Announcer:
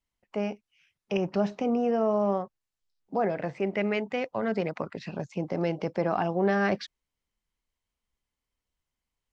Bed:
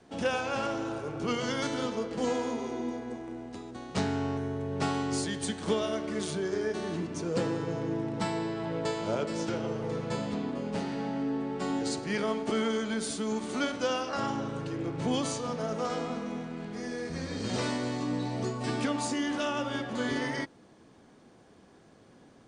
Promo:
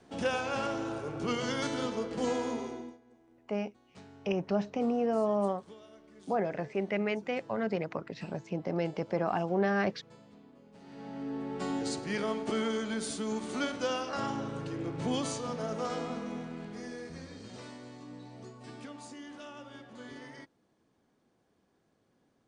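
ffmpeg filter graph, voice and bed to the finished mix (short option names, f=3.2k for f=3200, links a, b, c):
-filter_complex "[0:a]adelay=3150,volume=-3.5dB[a];[1:a]volume=19dB,afade=t=out:st=2.57:d=0.41:silence=0.0841395,afade=t=in:st=10.79:d=0.8:silence=0.0944061,afade=t=out:st=16.49:d=1.03:silence=0.223872[b];[a][b]amix=inputs=2:normalize=0"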